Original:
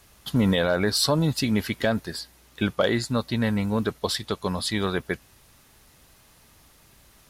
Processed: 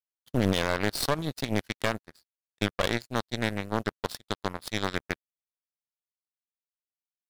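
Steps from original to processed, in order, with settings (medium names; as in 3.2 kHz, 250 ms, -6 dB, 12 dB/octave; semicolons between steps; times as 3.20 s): one-sided clip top -20.5 dBFS, bottom -14 dBFS; power-law waveshaper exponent 3; trim +2 dB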